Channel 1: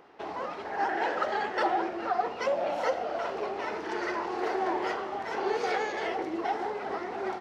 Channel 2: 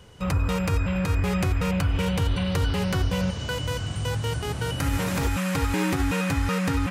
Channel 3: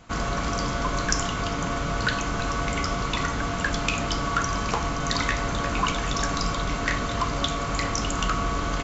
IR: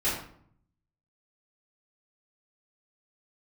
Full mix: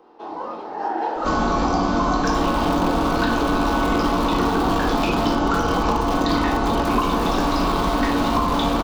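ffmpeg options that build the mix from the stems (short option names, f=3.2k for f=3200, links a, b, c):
-filter_complex "[0:a]volume=-8.5dB,asplit=2[a][b];[b]volume=-5.5dB[c];[1:a]aeval=exprs='(mod(12.6*val(0)+1,2)-1)/12.6':c=same,adelay=2050,volume=-1dB,asplit=2[d][e];[e]volume=-16.5dB[f];[2:a]bandreject=f=6.8k:w=17,adelay=1150,volume=-2.5dB,asplit=2[g][h];[h]volume=-4dB[i];[3:a]atrim=start_sample=2205[j];[c][f][i]amix=inputs=3:normalize=0[k];[k][j]afir=irnorm=-1:irlink=0[l];[a][d][g][l]amix=inputs=4:normalize=0,equalizer=f=125:t=o:w=1:g=-6,equalizer=f=250:t=o:w=1:g=10,equalizer=f=500:t=o:w=1:g=3,equalizer=f=1k:t=o:w=1:g=10,equalizer=f=2k:t=o:w=1:g=-8,equalizer=f=4k:t=o:w=1:g=5,acrossover=split=250|4200[m][n][o];[m]acompressor=threshold=-23dB:ratio=4[p];[n]acompressor=threshold=-19dB:ratio=4[q];[o]acompressor=threshold=-43dB:ratio=4[r];[p][q][r]amix=inputs=3:normalize=0"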